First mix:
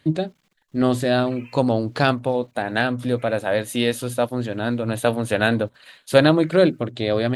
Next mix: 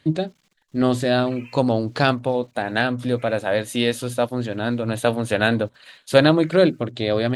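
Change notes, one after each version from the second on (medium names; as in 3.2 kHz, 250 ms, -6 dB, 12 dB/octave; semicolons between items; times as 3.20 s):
first voice: add treble shelf 5 kHz -6.5 dB; master: add peaking EQ 6.3 kHz +5.5 dB 1.9 oct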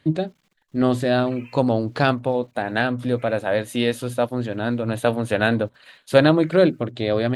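master: add peaking EQ 6.3 kHz -5.5 dB 1.9 oct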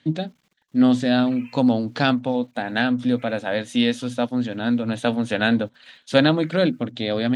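first voice: add cabinet simulation 140–8300 Hz, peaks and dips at 250 Hz +7 dB, 370 Hz -10 dB, 600 Hz -4 dB, 1.1 kHz -5 dB, 3.4 kHz +5 dB, 5.8 kHz +6 dB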